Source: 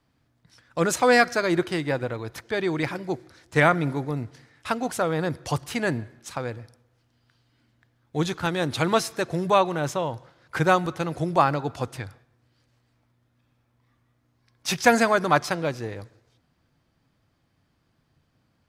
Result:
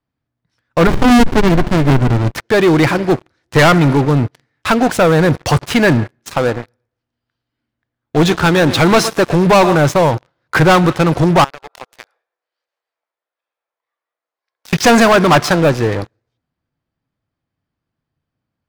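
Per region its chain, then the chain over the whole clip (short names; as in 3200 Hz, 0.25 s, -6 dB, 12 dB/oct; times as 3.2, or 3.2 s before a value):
0.87–2.35 comb 7 ms, depth 34% + running maximum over 65 samples
6.34–9.75 bell 120 Hz -5.5 dB 0.46 oct + feedback echo 0.115 s, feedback 35%, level -18 dB
11.44–14.73 inverse Chebyshev high-pass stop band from 230 Hz + compressor 5:1, threshold -43 dBFS
whole clip: high shelf 6200 Hz -12 dB; sample leveller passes 5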